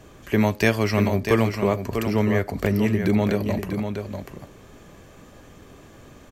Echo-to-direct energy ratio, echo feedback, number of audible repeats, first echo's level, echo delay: -7.0 dB, no steady repeat, 1, -7.0 dB, 0.644 s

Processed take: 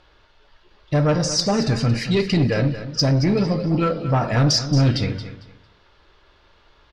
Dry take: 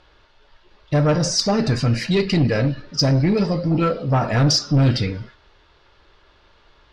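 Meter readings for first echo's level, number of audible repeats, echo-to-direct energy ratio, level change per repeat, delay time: -12.5 dB, 2, -12.5 dB, -13.0 dB, 0.226 s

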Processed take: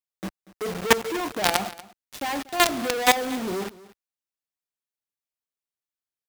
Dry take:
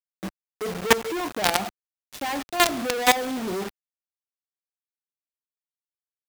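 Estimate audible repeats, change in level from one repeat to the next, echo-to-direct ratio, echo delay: 1, no steady repeat, -19.5 dB, 0.238 s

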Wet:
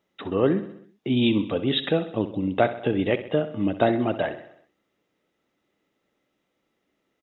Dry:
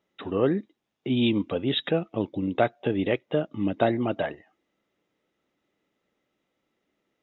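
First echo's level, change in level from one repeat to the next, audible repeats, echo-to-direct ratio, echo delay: -13.0 dB, -5.0 dB, 5, -11.5 dB, 64 ms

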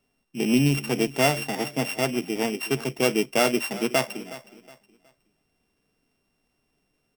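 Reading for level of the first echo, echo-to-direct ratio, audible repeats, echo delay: -16.5 dB, -16.0 dB, 2, 0.367 s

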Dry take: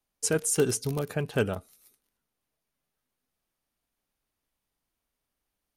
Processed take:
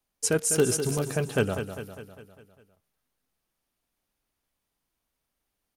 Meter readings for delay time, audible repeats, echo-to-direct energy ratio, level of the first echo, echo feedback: 0.201 s, 5, -7.5 dB, -9.0 dB, 54%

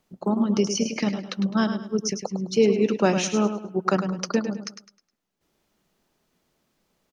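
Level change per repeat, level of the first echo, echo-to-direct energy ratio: -10.0 dB, -9.0 dB, -8.5 dB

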